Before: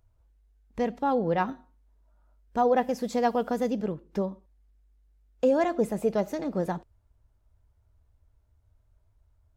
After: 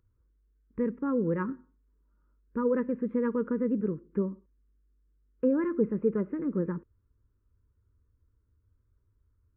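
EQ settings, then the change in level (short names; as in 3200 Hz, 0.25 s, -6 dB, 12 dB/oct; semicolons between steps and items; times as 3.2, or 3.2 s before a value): Gaussian blur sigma 6.1 samples; Butterworth band-stop 720 Hz, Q 1; low shelf 96 Hz -12 dB; +3.5 dB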